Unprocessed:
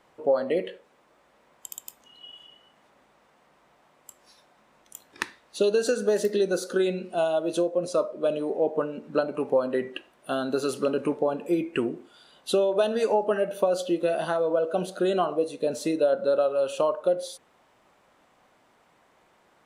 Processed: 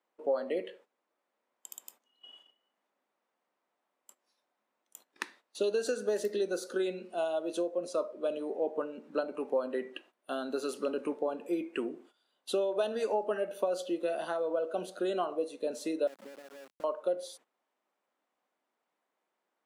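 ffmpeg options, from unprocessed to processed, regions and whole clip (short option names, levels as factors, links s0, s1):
-filter_complex "[0:a]asettb=1/sr,asplit=3[s0][s1][s2];[s0]atrim=end=16.074[s3];[s1]atrim=start=16.07:end=16.84,asetpts=PTS-STARTPTS,afade=t=in:d=0.004:c=qsin,afade=t=out:st=0.766:d=0.004:c=qsin,acompressor=threshold=0.0447:ratio=4:attack=3.2:release=140:knee=1:detection=peak,bandpass=f=220:t=q:w=1.9,aeval=exprs='val(0)*gte(abs(val(0)),0.00891)':c=same[s4];[s2]atrim=start=16.836[s5];[s3][s4]acrossfade=d=0.004:c1=hsin:c2=qsin[s6];[s6][s5]acrossfade=d=0.004:c1=qsin:c2=hsin,highpass=f=220:w=0.5412,highpass=f=220:w=1.3066,agate=range=0.2:threshold=0.00355:ratio=16:detection=peak,volume=0.422"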